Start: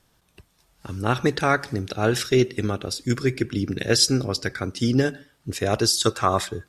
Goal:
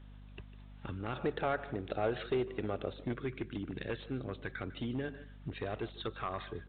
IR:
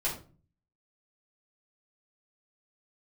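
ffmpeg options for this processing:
-filter_complex "[0:a]acompressor=threshold=-38dB:ratio=3,volume=29dB,asoftclip=hard,volume=-29dB,lowshelf=f=160:g=-4,asplit=2[a][b];[b]adelay=150,highpass=300,lowpass=3.4k,asoftclip=type=hard:threshold=-37dB,volume=-14dB[c];[a][c]amix=inputs=2:normalize=0,aeval=exprs='val(0)+0.00282*(sin(2*PI*50*n/s)+sin(2*PI*2*50*n/s)/2+sin(2*PI*3*50*n/s)/3+sin(2*PI*4*50*n/s)/4+sin(2*PI*5*50*n/s)/5)':c=same,asettb=1/sr,asplit=3[d][e][f];[d]atrim=end=1.134[g];[e]atrim=start=1.13:end=3.21,asetpts=PTS-STARTPTS,afade=t=in:d=0.004:c=qsin,afade=t=out:st=2.076:d=0.004:c=qsin,equalizer=f=590:w=1.2:g=9[h];[f]atrim=start=3.206[i];[g][h]acrossfade=d=0.004:c1=hsin:c2=qsin[j];[j][i]acrossfade=d=0.004:c1=qsin:c2=hsin" -ar 8000 -c:a pcm_alaw

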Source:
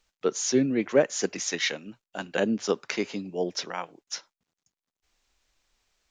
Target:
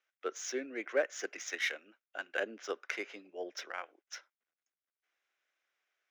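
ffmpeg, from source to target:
-af "highpass=f=380:w=0.5412,highpass=f=380:w=1.3066,equalizer=f=440:t=q:w=4:g=-4,equalizer=f=920:t=q:w=4:g=-7,equalizer=f=1.5k:t=q:w=4:g=7,equalizer=f=2.1k:t=q:w=4:g=5,equalizer=f=4.4k:t=q:w=4:g=-9,lowpass=f=7.1k:w=0.5412,lowpass=f=7.1k:w=1.3066,adynamicsmooth=sensitivity=5.5:basefreq=5.5k,volume=-8dB"

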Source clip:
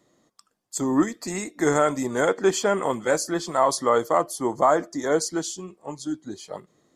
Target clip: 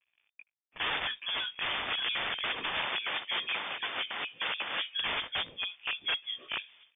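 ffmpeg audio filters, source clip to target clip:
-filter_complex "[0:a]acrusher=bits=8:mix=0:aa=0.5,flanger=delay=15.5:depth=4.8:speed=1.4,equalizer=f=1.1k:t=o:w=0.67:g=14.5,aeval=exprs='(mod(16.8*val(0)+1,2)-1)/16.8':c=same,asplit=2[a][b];[b]adelay=1633,volume=-23dB,highshelf=f=4k:g=-36.7[c];[a][c]amix=inputs=2:normalize=0,lowpass=f=3.1k:t=q:w=0.5098,lowpass=f=3.1k:t=q:w=0.6013,lowpass=f=3.1k:t=q:w=0.9,lowpass=f=3.1k:t=q:w=2.563,afreqshift=-3600,asettb=1/sr,asplit=3[d][e][f];[d]atrim=end=2.854[g];[e]atrim=start=2.85:end=4.93,asetpts=PTS-STARTPTS,afade=t=in:d=0.004:c=qsin,afade=t=out:st=2.076:d=0.004:c=qsin,highpass=f=250:p=1[h];[f]atrim=start=4.926[i];[g][h]acrossfade=d=0.004:c1=hsin:c2=qsin[j];[j][i]acrossfade=d=0.004:c1=qsin:c2=hsin"

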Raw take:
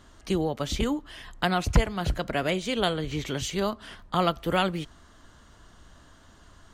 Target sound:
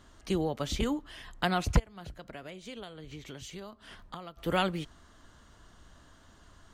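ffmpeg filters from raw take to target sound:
-filter_complex "[0:a]asplit=3[a][b][c];[a]afade=t=out:st=1.78:d=0.02[d];[b]acompressor=threshold=-37dB:ratio=12,afade=t=in:st=1.78:d=0.02,afade=t=out:st=4.37:d=0.02[e];[c]afade=t=in:st=4.37:d=0.02[f];[d][e][f]amix=inputs=3:normalize=0,volume=-3.5dB"

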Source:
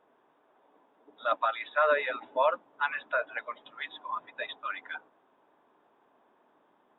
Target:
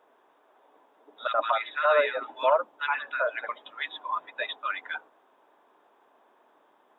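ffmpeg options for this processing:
-filter_complex "[0:a]bass=f=250:g=-13,treble=f=4k:g=3,asettb=1/sr,asplit=3[a][b][c];[a]atrim=end=1.274[d];[b]atrim=start=1.27:end=3.49,asetpts=PTS-STARTPTS,afade=t=in:d=0.004:c=qsin,afade=t=out:st=2.216:d=0.004:c=qsin,acrossover=split=1500[e][f];[e]adelay=70[g];[g][f]amix=inputs=2:normalize=0,atrim=end_sample=97902[h];[c]atrim=start=3.486[i];[d][h]acrossfade=d=0.004:c1=hsin:c2=qsin[j];[j][i]acrossfade=d=0.004:c1=qsin:c2=hsin,volume=4.5dB"

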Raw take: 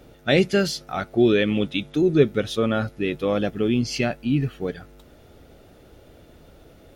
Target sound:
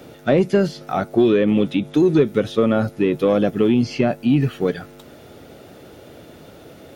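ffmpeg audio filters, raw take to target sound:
-filter_complex "[0:a]acrossover=split=2700[a][b];[b]acompressor=threshold=-42dB:ratio=4:attack=1:release=60[c];[a][c]amix=inputs=2:normalize=0,highpass=120,acrossover=split=1000|5500[d][e][f];[d]acompressor=threshold=-20dB:ratio=4[g];[e]acompressor=threshold=-41dB:ratio=4[h];[f]acompressor=threshold=-54dB:ratio=4[i];[g][h][i]amix=inputs=3:normalize=0,asplit=2[j][k];[k]asoftclip=type=tanh:threshold=-20dB,volume=-3.5dB[l];[j][l]amix=inputs=2:normalize=0,volume=4.5dB"

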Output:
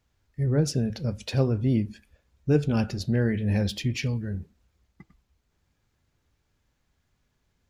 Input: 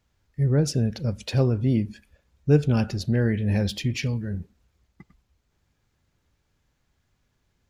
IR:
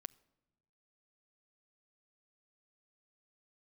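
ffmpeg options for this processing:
-af "flanger=delay=2.6:depth=2.1:regen=-85:speed=0.48:shape=sinusoidal,volume=3dB"

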